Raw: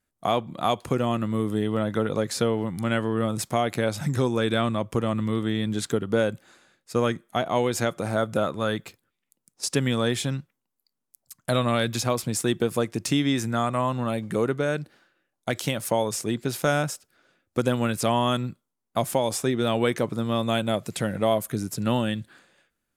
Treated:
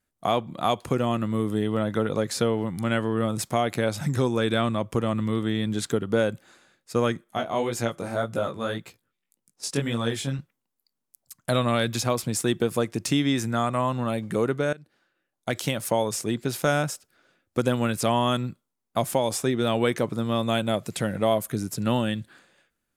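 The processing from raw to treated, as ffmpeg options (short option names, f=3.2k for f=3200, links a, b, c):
-filter_complex "[0:a]asettb=1/sr,asplit=3[a][b][c];[a]atrim=end=7.244[d];[b]atrim=start=7.24:end=10.39,asetpts=PTS-STARTPTS,afade=t=in:d=0.004:c=qsin,afade=t=out:st=3.146:d=0.004:c=qsin,flanger=delay=16.5:depth=5.5:speed=1.8[e];[c]atrim=start=10.386[f];[d][e]acrossfade=d=0.004:c1=hsin:c2=qsin[g];[g][f]acrossfade=d=0.004:c1=qsin:c2=hsin,asplit=2[h][i];[h]atrim=end=14.73,asetpts=PTS-STARTPTS,afade=t=out:st=14.726:d=0.004:c=hsin:silence=0.1[j];[i]atrim=start=14.73,asetpts=PTS-STARTPTS,afade=t=in:d=0.84:silence=0.1[k];[j][k]concat=n=2:v=0:a=1"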